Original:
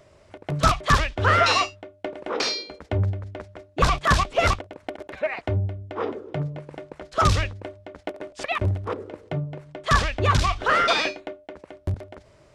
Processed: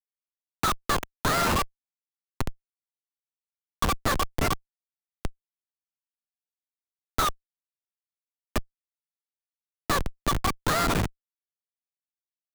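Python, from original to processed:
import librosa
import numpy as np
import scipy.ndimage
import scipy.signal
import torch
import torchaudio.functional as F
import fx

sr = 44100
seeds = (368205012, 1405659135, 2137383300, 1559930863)

y = scipy.signal.sosfilt(scipy.signal.butter(4, 920.0, 'highpass', fs=sr, output='sos'), x)
y = fx.high_shelf(y, sr, hz=3300.0, db=-10.5)
y = fx.schmitt(y, sr, flips_db=-22.0)
y = fx.band_squash(y, sr, depth_pct=40)
y = y * librosa.db_to_amplitude(8.0)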